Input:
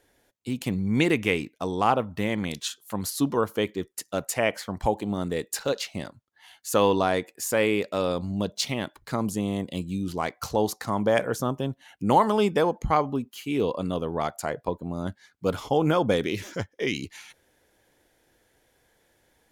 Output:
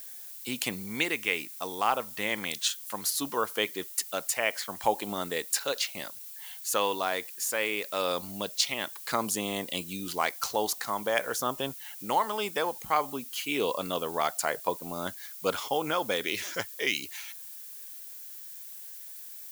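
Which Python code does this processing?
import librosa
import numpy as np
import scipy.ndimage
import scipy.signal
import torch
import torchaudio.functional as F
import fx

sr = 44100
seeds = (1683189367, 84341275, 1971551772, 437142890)

y = fx.highpass(x, sr, hz=1400.0, slope=6)
y = fx.rider(y, sr, range_db=5, speed_s=0.5)
y = fx.dmg_noise_colour(y, sr, seeds[0], colour='violet', level_db=-47.0)
y = y * 10.0 ** (3.0 / 20.0)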